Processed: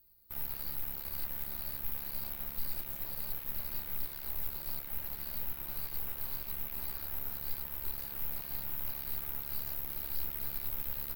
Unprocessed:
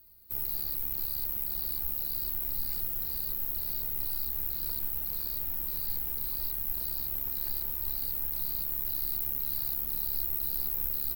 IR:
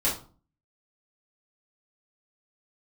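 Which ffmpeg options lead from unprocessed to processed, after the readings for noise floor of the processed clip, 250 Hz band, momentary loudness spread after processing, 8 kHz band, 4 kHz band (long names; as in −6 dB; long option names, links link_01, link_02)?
−44 dBFS, −1.5 dB, 2 LU, −3.5 dB, −5.0 dB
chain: -filter_complex "[0:a]aeval=exprs='0.15*(cos(1*acos(clip(val(0)/0.15,-1,1)))-cos(1*PI/2))+0.0188*(cos(8*acos(clip(val(0)/0.15,-1,1)))-cos(8*PI/2))':channel_layout=same,asplit=2[link_01][link_02];[1:a]atrim=start_sample=2205[link_03];[link_02][link_03]afir=irnorm=-1:irlink=0,volume=-20.5dB[link_04];[link_01][link_04]amix=inputs=2:normalize=0,volume=-8.5dB"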